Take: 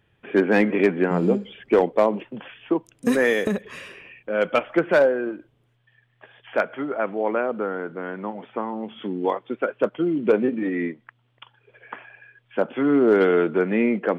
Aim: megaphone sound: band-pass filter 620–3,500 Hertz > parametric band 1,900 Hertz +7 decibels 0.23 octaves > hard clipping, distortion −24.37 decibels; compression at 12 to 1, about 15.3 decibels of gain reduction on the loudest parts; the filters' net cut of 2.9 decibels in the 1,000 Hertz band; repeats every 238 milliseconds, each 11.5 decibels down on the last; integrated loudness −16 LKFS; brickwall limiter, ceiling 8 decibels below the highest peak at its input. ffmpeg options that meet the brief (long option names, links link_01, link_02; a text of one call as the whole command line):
ffmpeg -i in.wav -af "equalizer=frequency=1000:width_type=o:gain=-3,acompressor=threshold=-29dB:ratio=12,alimiter=level_in=1dB:limit=-24dB:level=0:latency=1,volume=-1dB,highpass=620,lowpass=3500,equalizer=frequency=1900:width_type=o:width=0.23:gain=7,aecho=1:1:238|476|714:0.266|0.0718|0.0194,asoftclip=type=hard:threshold=-29.5dB,volume=25dB" out.wav